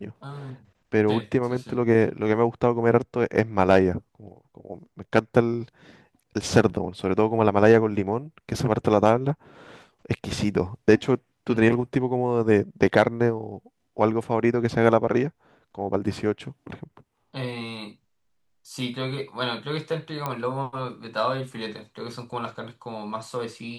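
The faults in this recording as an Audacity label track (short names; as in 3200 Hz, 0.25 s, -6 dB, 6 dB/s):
20.260000	20.260000	pop -14 dBFS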